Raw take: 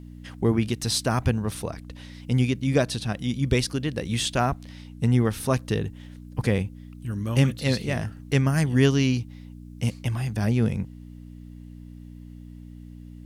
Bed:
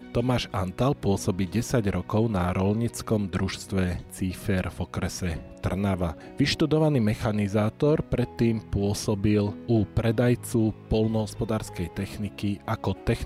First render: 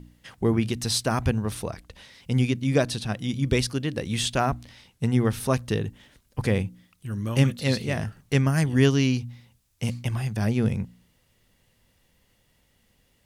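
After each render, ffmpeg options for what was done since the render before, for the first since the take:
-af "bandreject=f=60:t=h:w=4,bandreject=f=120:t=h:w=4,bandreject=f=180:t=h:w=4,bandreject=f=240:t=h:w=4,bandreject=f=300:t=h:w=4"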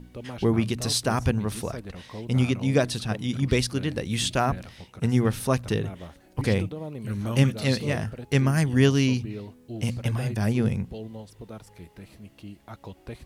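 -filter_complex "[1:a]volume=-14dB[a];[0:a][a]amix=inputs=2:normalize=0"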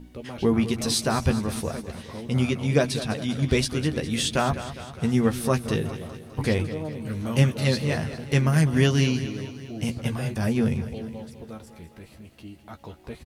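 -filter_complex "[0:a]asplit=2[a][b];[b]adelay=13,volume=-6.5dB[c];[a][c]amix=inputs=2:normalize=0,aecho=1:1:204|408|612|816|1020|1224:0.224|0.13|0.0753|0.0437|0.0253|0.0147"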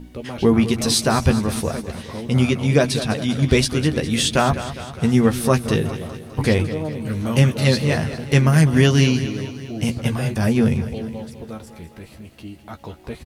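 -af "volume=6dB,alimiter=limit=-3dB:level=0:latency=1"

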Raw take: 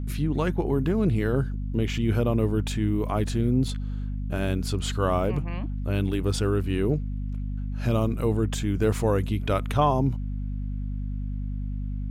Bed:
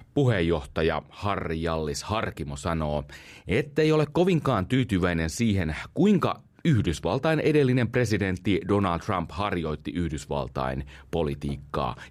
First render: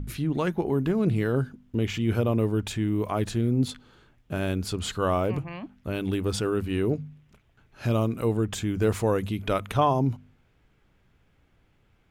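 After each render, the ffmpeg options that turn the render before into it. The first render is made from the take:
-af "bandreject=f=50:t=h:w=4,bandreject=f=100:t=h:w=4,bandreject=f=150:t=h:w=4,bandreject=f=200:t=h:w=4,bandreject=f=250:t=h:w=4"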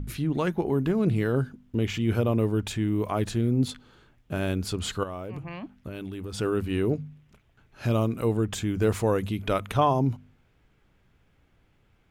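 -filter_complex "[0:a]asettb=1/sr,asplit=3[a][b][c];[a]atrim=end=5.034[d];[b]atrim=start=5.03:end=6.39,asetpts=PTS-STARTPTS,afade=t=in:d=0.004:c=qsin,afade=t=out:st=1.356:d=0.004:c=qsin,acompressor=threshold=-31dB:ratio=12:attack=3.2:release=140:knee=1:detection=peak[e];[c]atrim=start=6.386[f];[d][e]acrossfade=d=0.004:c1=hsin:c2=qsin[g];[g][f]acrossfade=d=0.004:c1=qsin:c2=hsin"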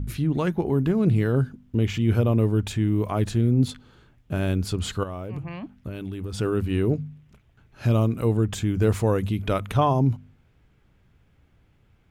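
-af "equalizer=f=86:t=o:w=2.7:g=6"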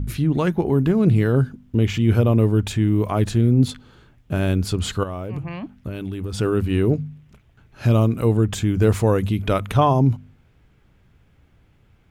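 -af "volume=4dB"

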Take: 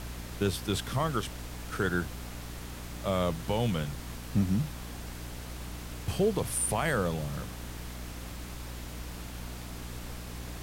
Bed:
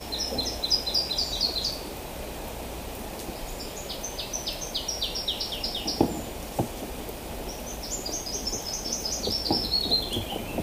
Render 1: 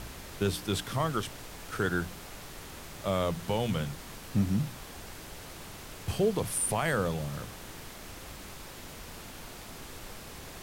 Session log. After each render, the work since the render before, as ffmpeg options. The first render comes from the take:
-af "bandreject=f=60:t=h:w=4,bandreject=f=120:t=h:w=4,bandreject=f=180:t=h:w=4,bandreject=f=240:t=h:w=4,bandreject=f=300:t=h:w=4"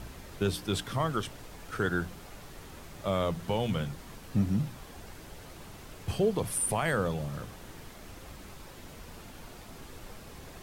-af "afftdn=nr=6:nf=-46"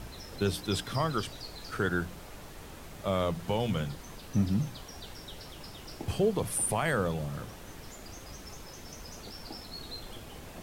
-filter_complex "[1:a]volume=-19.5dB[a];[0:a][a]amix=inputs=2:normalize=0"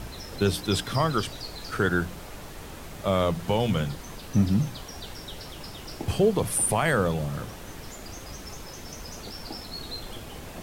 -af "volume=5.5dB"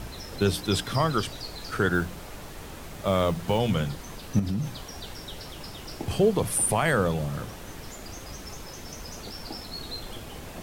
-filter_complex "[0:a]asettb=1/sr,asplit=3[a][b][c];[a]atrim=end=1.944[d];[b]atrim=start=1.94:end=3.59,asetpts=PTS-STARTPTS,afade=t=in:d=0.004:c=qsin,afade=t=out:st=1.646:d=0.004:c=qsin,acrusher=bits=7:mode=log:mix=0:aa=0.000001[e];[c]atrim=start=3.586[f];[d][e]acrossfade=d=0.004:c1=hsin:c2=qsin[g];[g][f]acrossfade=d=0.004:c1=qsin:c2=hsin,asettb=1/sr,asplit=3[h][i][j];[h]atrim=end=4.394[k];[i]atrim=start=4.39:end=6.11,asetpts=PTS-STARTPTS,afade=t=in:d=0.004:c=qsin,afade=t=out:st=1.716:d=0.004:c=qsin,acompressor=threshold=-24dB:ratio=6:attack=3.2:release=140:knee=1:detection=peak[l];[j]atrim=start=6.106[m];[k][l]acrossfade=d=0.004:c1=hsin:c2=qsin[n];[n][m]acrossfade=d=0.004:c1=qsin:c2=hsin"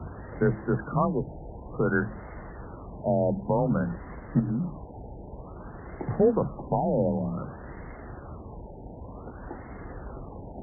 -af "afreqshift=29,afftfilt=real='re*lt(b*sr/1024,910*pow(2200/910,0.5+0.5*sin(2*PI*0.54*pts/sr)))':imag='im*lt(b*sr/1024,910*pow(2200/910,0.5+0.5*sin(2*PI*0.54*pts/sr)))':win_size=1024:overlap=0.75"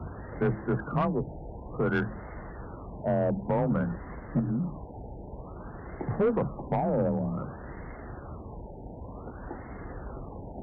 -af "asoftclip=type=tanh:threshold=-19dB"

